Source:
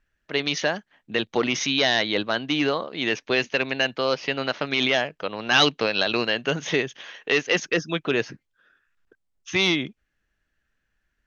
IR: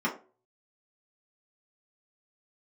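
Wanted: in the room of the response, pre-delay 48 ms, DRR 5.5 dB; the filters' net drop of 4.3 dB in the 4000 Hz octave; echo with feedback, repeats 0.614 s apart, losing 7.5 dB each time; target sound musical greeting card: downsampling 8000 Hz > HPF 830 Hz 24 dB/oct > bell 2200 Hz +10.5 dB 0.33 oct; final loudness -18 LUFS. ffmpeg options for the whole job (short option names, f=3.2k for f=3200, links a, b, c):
-filter_complex "[0:a]equalizer=f=4k:t=o:g=-7.5,aecho=1:1:614|1228|1842|2456|3070:0.422|0.177|0.0744|0.0312|0.0131,asplit=2[a][b];[1:a]atrim=start_sample=2205,adelay=48[c];[b][c]afir=irnorm=-1:irlink=0,volume=-15dB[d];[a][d]amix=inputs=2:normalize=0,aresample=8000,aresample=44100,highpass=f=830:w=0.5412,highpass=f=830:w=1.3066,equalizer=f=2.2k:t=o:w=0.33:g=10.5,volume=5.5dB"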